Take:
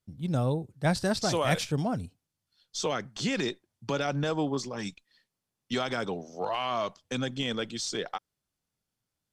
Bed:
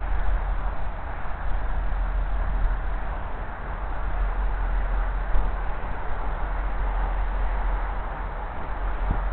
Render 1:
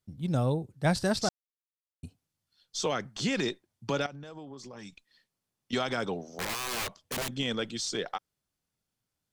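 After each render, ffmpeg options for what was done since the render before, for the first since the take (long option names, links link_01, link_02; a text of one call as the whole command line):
ffmpeg -i in.wav -filter_complex "[0:a]asettb=1/sr,asplit=3[link_01][link_02][link_03];[link_01]atrim=end=4.064[link_04];[link_02]atrim=start=4.06:end=5.73,asetpts=PTS-STARTPTS,afade=type=in:duration=0.004:curve=qsin,afade=type=out:start_time=1.666:duration=0.004:curve=qsin,acompressor=threshold=-41dB:ratio=10:attack=3.2:release=140:knee=1:detection=peak[link_05];[link_03]atrim=start=5.726[link_06];[link_04][link_05]acrossfade=duration=0.004:curve1=hsin:curve2=qsin[link_07];[link_07][link_06]acrossfade=duration=0.004:curve1=qsin:curve2=hsin,asettb=1/sr,asplit=3[link_08][link_09][link_10];[link_08]atrim=end=6.304[link_11];[link_09]atrim=start=6.3:end=7.33,asetpts=PTS-STARTPTS,afade=type=in:duration=0.004:curve=qsin,afade=type=out:start_time=1.026:duration=0.004:curve=qsin,aeval=exprs='(mod(25.1*val(0)+1,2)-1)/25.1':channel_layout=same[link_12];[link_10]atrim=start=7.326[link_13];[link_11][link_12]acrossfade=duration=0.004:curve1=hsin:curve2=qsin[link_14];[link_14][link_13]acrossfade=duration=0.004:curve1=qsin:curve2=hsin,asplit=3[link_15][link_16][link_17];[link_15]atrim=end=1.29,asetpts=PTS-STARTPTS,afade=type=out:start_time=1.286:duration=0.004:curve=hsin[link_18];[link_16]atrim=start=1.29:end=2.03,asetpts=PTS-STARTPTS,volume=0[link_19];[link_17]atrim=start=2.03,asetpts=PTS-STARTPTS,afade=type=in:duration=0.004:curve=hsin[link_20];[link_18][link_19][link_20]concat=n=3:v=0:a=1" out.wav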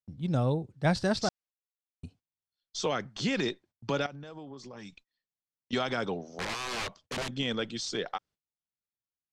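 ffmpeg -i in.wav -af "lowpass=5900,agate=range=-20dB:threshold=-56dB:ratio=16:detection=peak" out.wav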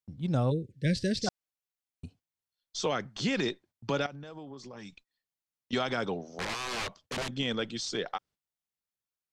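ffmpeg -i in.wav -filter_complex "[0:a]asplit=3[link_01][link_02][link_03];[link_01]afade=type=out:start_time=0.5:duration=0.02[link_04];[link_02]asuperstop=centerf=970:order=12:qfactor=0.84,afade=type=in:start_time=0.5:duration=0.02,afade=type=out:start_time=1.26:duration=0.02[link_05];[link_03]afade=type=in:start_time=1.26:duration=0.02[link_06];[link_04][link_05][link_06]amix=inputs=3:normalize=0" out.wav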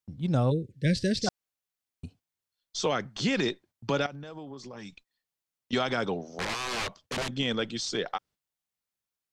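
ffmpeg -i in.wav -af "volume=2.5dB" out.wav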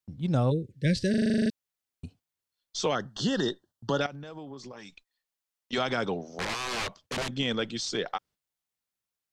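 ffmpeg -i in.wav -filter_complex "[0:a]asettb=1/sr,asplit=3[link_01][link_02][link_03];[link_01]atrim=end=2.954[link_04];[link_02]atrim=start=2.95:end=4.01,asetpts=PTS-STARTPTS,afade=type=in:duration=0.004:curve=qsin,afade=type=out:start_time=1.056:duration=0.004:curve=qsin,asuperstop=centerf=2300:order=8:qfactor=2.5[link_05];[link_03]atrim=start=4.006[link_06];[link_04][link_05]acrossfade=duration=0.004:curve1=hsin:curve2=qsin[link_07];[link_07][link_06]acrossfade=duration=0.004:curve1=qsin:curve2=hsin,asettb=1/sr,asplit=3[link_08][link_09][link_10];[link_08]atrim=end=4.724[link_11];[link_09]atrim=start=4.72:end=5.78,asetpts=PTS-STARTPTS,afade=type=in:duration=0.004:curve=qsin,afade=type=out:start_time=1.056:duration=0.004:curve=qsin,equalizer=frequency=130:width=0.69:gain=-10[link_12];[link_10]atrim=start=5.776[link_13];[link_11][link_12]acrossfade=duration=0.004:curve1=hsin:curve2=qsin[link_14];[link_14][link_13]acrossfade=duration=0.004:curve1=qsin:curve2=hsin,asplit=11[link_15][link_16][link_17][link_18][link_19][link_20][link_21][link_22][link_23][link_24][link_25];[link_15]atrim=end=1.142[link_26];[link_16]atrim=start=1.098:end=1.142[link_27];[link_17]atrim=start=1.098:end=1.142[link_28];[link_18]atrim=start=1.098:end=1.142[link_29];[link_19]atrim=start=1.098:end=1.142[link_30];[link_20]atrim=start=1.098:end=1.142[link_31];[link_21]atrim=start=1.098:end=1.142[link_32];[link_22]atrim=start=1.098:end=1.142[link_33];[link_23]atrim=start=1.098:end=1.142[link_34];[link_24]atrim=start=1.098:end=1.142[link_35];[link_25]atrim=start=1.498[link_36];[link_26][link_27]acrossfade=duration=0.004:curve1=hsin:curve2=hsin[link_37];[link_37][link_28]acrossfade=duration=0.004:curve1=hsin:curve2=hsin[link_38];[link_38][link_29]acrossfade=duration=0.004:curve1=hsin:curve2=hsin[link_39];[link_39][link_30]acrossfade=duration=0.004:curve1=hsin:curve2=hsin[link_40];[link_40][link_31]acrossfade=duration=0.004:curve1=hsin:curve2=hsin[link_41];[link_41][link_32]acrossfade=duration=0.004:curve1=hsin:curve2=hsin[link_42];[link_42][link_33]acrossfade=duration=0.004:curve1=hsin:curve2=hsin[link_43];[link_43][link_34]acrossfade=duration=0.004:curve1=hsin:curve2=hsin[link_44];[link_44][link_35]acrossfade=duration=0.004:curve1=hsin:curve2=hsin[link_45];[link_45][link_36]acrossfade=duration=0.004:curve1=hsin:curve2=hsin" out.wav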